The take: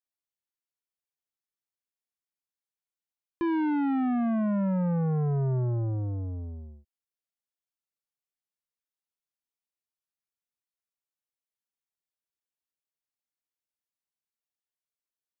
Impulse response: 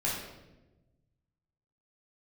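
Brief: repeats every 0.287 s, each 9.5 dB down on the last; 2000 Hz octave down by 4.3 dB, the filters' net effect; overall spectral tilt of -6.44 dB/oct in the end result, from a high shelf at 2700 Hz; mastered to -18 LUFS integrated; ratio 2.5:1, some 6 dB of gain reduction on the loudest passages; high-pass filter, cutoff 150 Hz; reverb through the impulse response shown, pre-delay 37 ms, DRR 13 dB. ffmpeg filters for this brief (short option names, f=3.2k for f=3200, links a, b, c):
-filter_complex "[0:a]highpass=150,equalizer=f=2k:t=o:g=-7.5,highshelf=f=2.7k:g=3.5,acompressor=threshold=-33dB:ratio=2.5,aecho=1:1:287|574|861|1148:0.335|0.111|0.0365|0.012,asplit=2[a][b];[1:a]atrim=start_sample=2205,adelay=37[c];[b][c]afir=irnorm=-1:irlink=0,volume=-20dB[d];[a][d]amix=inputs=2:normalize=0,volume=16dB"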